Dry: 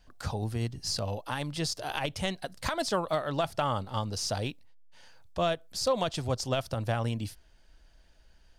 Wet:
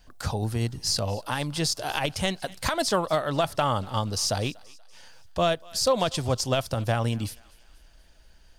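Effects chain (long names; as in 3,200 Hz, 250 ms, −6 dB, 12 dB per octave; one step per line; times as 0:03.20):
high-shelf EQ 7,000 Hz +5.5 dB
feedback echo with a high-pass in the loop 240 ms, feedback 55%, high-pass 860 Hz, level −21.5 dB
level +4.5 dB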